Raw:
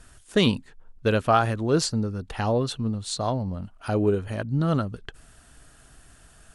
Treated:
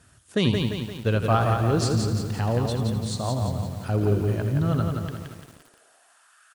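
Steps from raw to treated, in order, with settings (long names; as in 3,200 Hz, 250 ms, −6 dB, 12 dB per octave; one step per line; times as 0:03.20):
echo with shifted repeats 82 ms, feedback 48%, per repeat −46 Hz, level −10.5 dB
high-pass filter sweep 100 Hz → 1,300 Hz, 0:04.97–0:06.36
feedback echo at a low word length 173 ms, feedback 55%, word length 7 bits, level −4 dB
level −4 dB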